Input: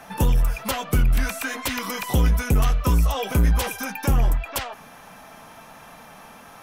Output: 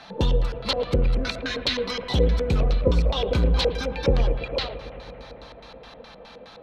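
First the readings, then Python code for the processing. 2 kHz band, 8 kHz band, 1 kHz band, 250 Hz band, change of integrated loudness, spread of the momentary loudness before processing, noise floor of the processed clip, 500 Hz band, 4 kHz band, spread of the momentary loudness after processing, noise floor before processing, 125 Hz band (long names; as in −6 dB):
−3.5 dB, −12.5 dB, −4.5 dB, −1.5 dB, −1.0 dB, 7 LU, −46 dBFS, +7.0 dB, +5.0 dB, 19 LU, −46 dBFS, −2.5 dB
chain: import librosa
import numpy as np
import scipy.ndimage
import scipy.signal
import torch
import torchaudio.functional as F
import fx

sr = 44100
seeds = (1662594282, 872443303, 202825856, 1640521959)

y = fx.filter_lfo_lowpass(x, sr, shape='square', hz=4.8, low_hz=500.0, high_hz=4100.0, q=8.0)
y = fx.echo_bbd(y, sr, ms=111, stages=2048, feedback_pct=83, wet_db=-14.5)
y = y * librosa.db_to_amplitude(-3.0)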